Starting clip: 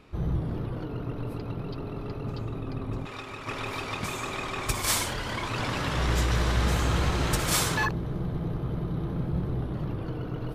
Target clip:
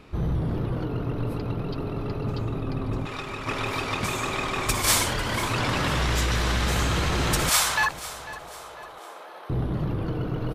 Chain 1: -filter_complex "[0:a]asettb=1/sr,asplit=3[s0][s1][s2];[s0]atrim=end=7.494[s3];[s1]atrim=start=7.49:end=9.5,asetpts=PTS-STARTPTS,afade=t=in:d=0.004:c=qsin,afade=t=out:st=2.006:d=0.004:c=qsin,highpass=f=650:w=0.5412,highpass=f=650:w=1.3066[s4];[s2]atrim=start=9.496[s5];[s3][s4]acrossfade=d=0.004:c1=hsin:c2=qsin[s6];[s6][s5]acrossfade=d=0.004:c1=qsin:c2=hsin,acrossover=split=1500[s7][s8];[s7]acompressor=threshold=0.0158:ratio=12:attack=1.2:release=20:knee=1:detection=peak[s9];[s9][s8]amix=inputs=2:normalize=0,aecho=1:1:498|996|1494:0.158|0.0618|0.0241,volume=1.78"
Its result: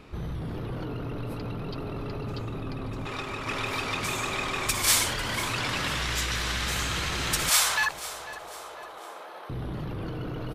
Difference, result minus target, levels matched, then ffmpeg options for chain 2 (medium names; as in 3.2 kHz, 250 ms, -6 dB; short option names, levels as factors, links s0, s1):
compression: peak gain reduction +8.5 dB
-filter_complex "[0:a]asettb=1/sr,asplit=3[s0][s1][s2];[s0]atrim=end=7.494[s3];[s1]atrim=start=7.49:end=9.5,asetpts=PTS-STARTPTS,afade=t=in:d=0.004:c=qsin,afade=t=out:st=2.006:d=0.004:c=qsin,highpass=f=650:w=0.5412,highpass=f=650:w=1.3066[s4];[s2]atrim=start=9.496[s5];[s3][s4]acrossfade=d=0.004:c1=hsin:c2=qsin[s6];[s6][s5]acrossfade=d=0.004:c1=qsin:c2=hsin,acrossover=split=1500[s7][s8];[s7]acompressor=threshold=0.0473:ratio=12:attack=1.2:release=20:knee=1:detection=peak[s9];[s9][s8]amix=inputs=2:normalize=0,aecho=1:1:498|996|1494:0.158|0.0618|0.0241,volume=1.78"